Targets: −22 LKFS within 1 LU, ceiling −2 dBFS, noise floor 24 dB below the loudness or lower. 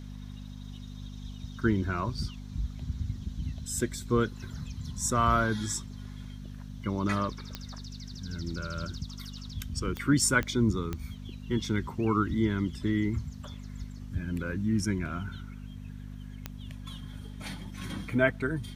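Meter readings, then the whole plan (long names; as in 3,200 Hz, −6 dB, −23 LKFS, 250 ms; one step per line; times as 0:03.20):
number of clicks 5; mains hum 50 Hz; hum harmonics up to 250 Hz; level of the hum −39 dBFS; integrated loudness −31.0 LKFS; sample peak −10.0 dBFS; target loudness −22.0 LKFS
→ click removal
hum removal 50 Hz, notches 5
level +9 dB
brickwall limiter −2 dBFS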